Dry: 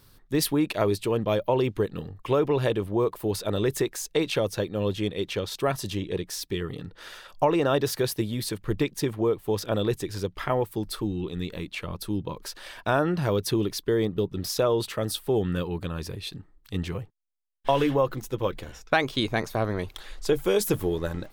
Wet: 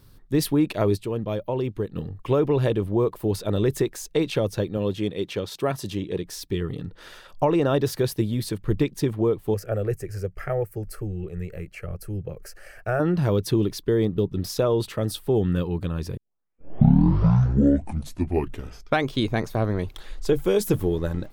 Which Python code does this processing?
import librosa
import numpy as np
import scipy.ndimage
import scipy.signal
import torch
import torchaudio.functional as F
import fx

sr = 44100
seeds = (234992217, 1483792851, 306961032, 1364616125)

y = fx.highpass(x, sr, hz=160.0, slope=6, at=(4.77, 6.25))
y = fx.fixed_phaser(y, sr, hz=980.0, stages=6, at=(9.54, 13.0))
y = fx.edit(y, sr, fx.clip_gain(start_s=0.97, length_s=0.99, db=-5.0),
    fx.tape_start(start_s=16.17, length_s=2.89), tone=tone)
y = fx.low_shelf(y, sr, hz=450.0, db=8.5)
y = y * librosa.db_to_amplitude(-2.5)